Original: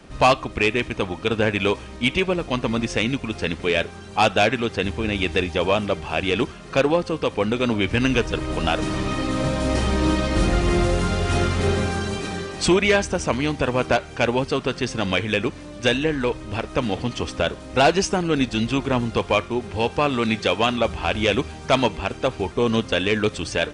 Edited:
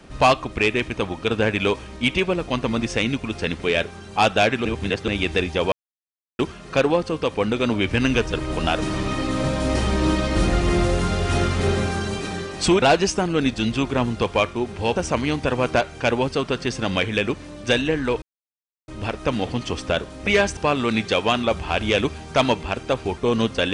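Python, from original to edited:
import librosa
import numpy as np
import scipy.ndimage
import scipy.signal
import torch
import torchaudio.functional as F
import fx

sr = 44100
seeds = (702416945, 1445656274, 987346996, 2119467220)

y = fx.edit(x, sr, fx.reverse_span(start_s=4.65, length_s=0.43),
    fx.silence(start_s=5.72, length_s=0.67),
    fx.swap(start_s=12.82, length_s=0.3, other_s=17.77, other_length_s=2.14),
    fx.insert_silence(at_s=16.38, length_s=0.66), tone=tone)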